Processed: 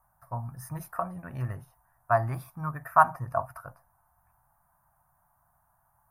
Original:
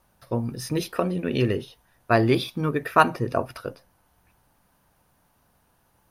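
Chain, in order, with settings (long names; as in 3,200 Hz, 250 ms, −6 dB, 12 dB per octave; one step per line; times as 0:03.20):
drawn EQ curve 150 Hz 0 dB, 210 Hz −12 dB, 450 Hz −23 dB, 670 Hz +4 dB, 1,100 Hz +6 dB, 1,700 Hz −2 dB, 3,400 Hz −30 dB, 7,100 Hz −7 dB, 13,000 Hz +3 dB
level −5.5 dB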